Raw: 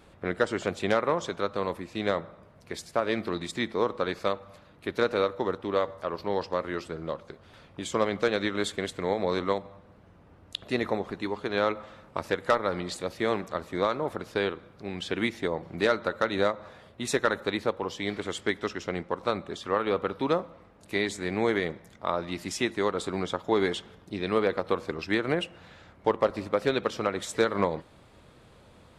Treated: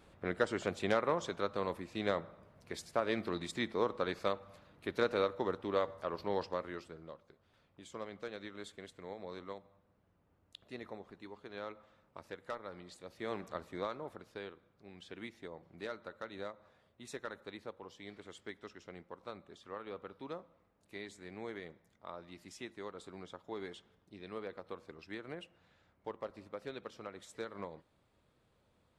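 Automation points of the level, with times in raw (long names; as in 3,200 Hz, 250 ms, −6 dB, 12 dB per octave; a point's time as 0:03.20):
0:06.41 −6.5 dB
0:07.22 −18.5 dB
0:13.01 −18.5 dB
0:13.48 −9 dB
0:14.46 −18.5 dB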